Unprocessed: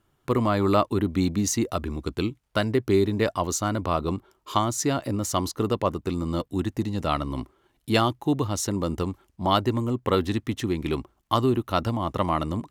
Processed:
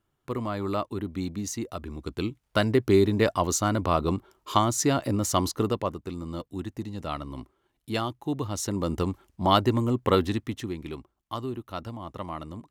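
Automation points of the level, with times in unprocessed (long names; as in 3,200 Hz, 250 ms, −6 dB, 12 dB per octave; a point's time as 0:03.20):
0:01.78 −8 dB
0:02.62 +1 dB
0:05.55 +1 dB
0:06.02 −7.5 dB
0:08.13 −7.5 dB
0:09.10 +1 dB
0:10.14 +1 dB
0:10.99 −11 dB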